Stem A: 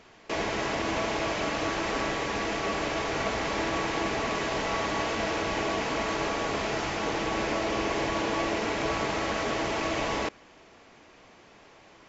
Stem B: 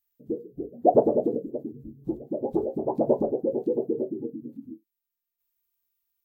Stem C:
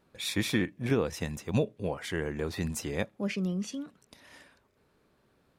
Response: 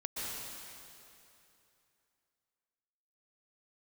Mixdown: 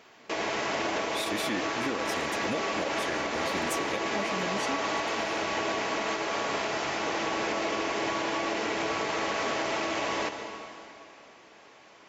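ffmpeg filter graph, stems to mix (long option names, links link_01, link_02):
-filter_complex "[0:a]volume=-1.5dB,asplit=2[link_01][link_02];[link_02]volume=-8dB[link_03];[1:a]asoftclip=type=tanh:threshold=-22dB,volume=-8dB[link_04];[2:a]aecho=1:1:3.5:0.52,adelay=950,volume=1dB[link_05];[3:a]atrim=start_sample=2205[link_06];[link_03][link_06]afir=irnorm=-1:irlink=0[link_07];[link_01][link_04][link_05][link_07]amix=inputs=4:normalize=0,highpass=frequency=330:poles=1,alimiter=limit=-20dB:level=0:latency=1:release=102"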